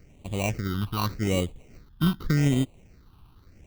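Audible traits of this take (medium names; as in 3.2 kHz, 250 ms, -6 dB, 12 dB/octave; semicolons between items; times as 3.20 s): aliases and images of a low sample rate 1.7 kHz, jitter 0%; phasing stages 6, 0.85 Hz, lowest notch 530–1500 Hz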